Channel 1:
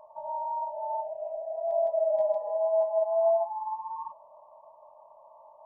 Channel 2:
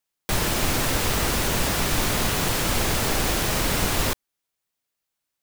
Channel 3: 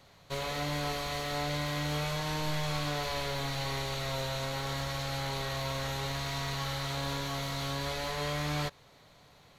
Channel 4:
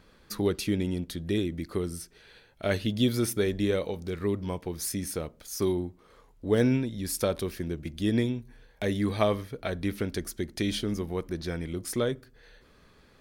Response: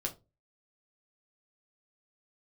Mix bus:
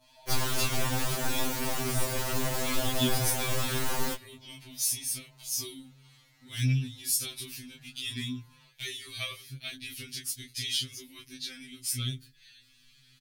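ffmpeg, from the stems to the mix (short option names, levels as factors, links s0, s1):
-filter_complex "[0:a]acompressor=threshold=0.0224:ratio=6,volume=0.335[s0];[1:a]aeval=exprs='(tanh(15.8*val(0)+0.4)-tanh(0.4))/15.8':c=same,volume=1.41[s1];[2:a]asoftclip=type=tanh:threshold=0.0266,volume=0.1[s2];[3:a]firequalizer=gain_entry='entry(170,0);entry(450,-23);entry(2600,11)':delay=0.05:min_phase=1,volume=1.06[s3];[s0][s1][s2][s3]amix=inputs=4:normalize=0,adynamicequalizer=threshold=0.00794:dfrequency=3100:dqfactor=0.75:tfrequency=3100:tqfactor=0.75:attack=5:release=100:ratio=0.375:range=2:mode=cutabove:tftype=bell,flanger=delay=19:depth=6.1:speed=0.71,afftfilt=real='re*2.45*eq(mod(b,6),0)':imag='im*2.45*eq(mod(b,6),0)':win_size=2048:overlap=0.75"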